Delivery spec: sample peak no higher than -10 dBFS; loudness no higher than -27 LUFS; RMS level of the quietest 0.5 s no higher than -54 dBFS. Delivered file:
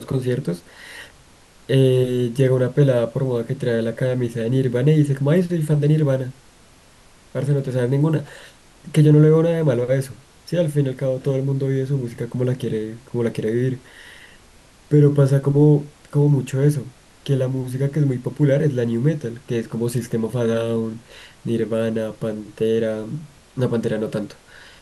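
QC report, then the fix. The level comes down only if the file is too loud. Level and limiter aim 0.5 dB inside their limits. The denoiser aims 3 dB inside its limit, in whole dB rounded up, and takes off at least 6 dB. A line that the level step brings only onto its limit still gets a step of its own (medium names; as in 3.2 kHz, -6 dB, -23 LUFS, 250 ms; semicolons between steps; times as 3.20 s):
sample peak -5.0 dBFS: fail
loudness -20.0 LUFS: fail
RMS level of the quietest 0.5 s -50 dBFS: fail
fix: trim -7.5 dB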